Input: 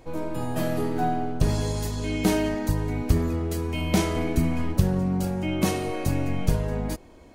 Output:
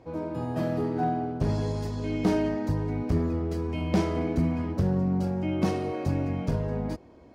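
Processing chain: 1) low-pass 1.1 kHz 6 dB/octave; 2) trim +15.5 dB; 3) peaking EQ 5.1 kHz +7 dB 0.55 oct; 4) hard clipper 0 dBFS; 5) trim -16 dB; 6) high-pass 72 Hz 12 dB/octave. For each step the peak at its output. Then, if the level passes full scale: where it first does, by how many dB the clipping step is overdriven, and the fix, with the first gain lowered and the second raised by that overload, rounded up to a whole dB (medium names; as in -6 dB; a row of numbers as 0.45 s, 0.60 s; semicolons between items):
-7.5 dBFS, +8.0 dBFS, +8.0 dBFS, 0.0 dBFS, -16.0 dBFS, -12.5 dBFS; step 2, 8.0 dB; step 2 +7.5 dB, step 5 -8 dB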